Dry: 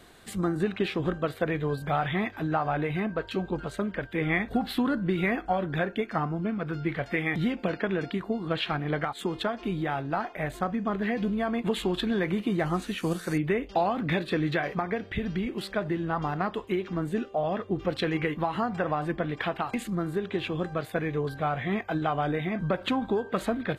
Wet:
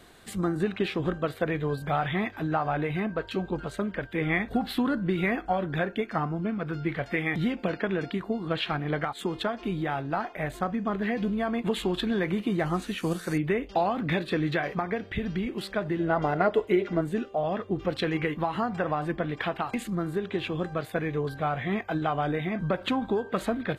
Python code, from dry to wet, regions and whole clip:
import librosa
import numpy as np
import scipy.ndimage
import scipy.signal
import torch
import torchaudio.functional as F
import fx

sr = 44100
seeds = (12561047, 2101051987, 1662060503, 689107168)

y = fx.chain(x, sr, fx.peak_eq(hz=1300.0, db=-4.5, octaves=0.28),
    fx.notch(hz=390.0, q=9.7),
    fx.small_body(hz=(420.0, 610.0, 1400.0, 2000.0), ring_ms=35, db=13), at=(15.99, 17.01))